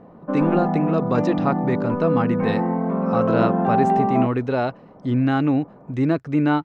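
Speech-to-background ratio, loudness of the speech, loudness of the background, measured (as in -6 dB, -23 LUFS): -1.5 dB, -23.5 LUFS, -22.0 LUFS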